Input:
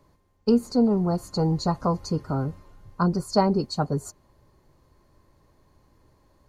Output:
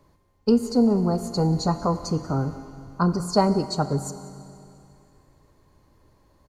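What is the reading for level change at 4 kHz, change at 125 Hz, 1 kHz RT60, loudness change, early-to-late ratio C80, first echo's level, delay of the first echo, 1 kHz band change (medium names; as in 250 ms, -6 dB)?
+2.0 dB, +1.5 dB, 2.6 s, +1.5 dB, 12.5 dB, -20.5 dB, 184 ms, +1.5 dB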